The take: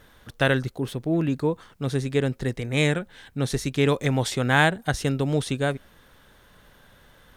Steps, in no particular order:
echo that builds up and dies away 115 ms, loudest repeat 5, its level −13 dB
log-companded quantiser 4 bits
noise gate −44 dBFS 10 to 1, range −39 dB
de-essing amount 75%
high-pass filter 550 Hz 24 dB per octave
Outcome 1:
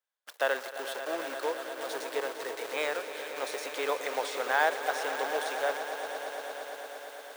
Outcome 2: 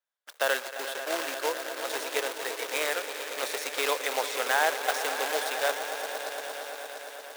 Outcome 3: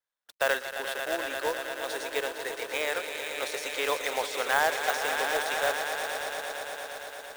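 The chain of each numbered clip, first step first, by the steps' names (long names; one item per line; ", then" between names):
log-companded quantiser, then de-essing, then echo that builds up and dies away, then noise gate, then high-pass filter
de-essing, then echo that builds up and dies away, then log-companded quantiser, then noise gate, then high-pass filter
echo that builds up and dies away, then de-essing, then high-pass filter, then log-companded quantiser, then noise gate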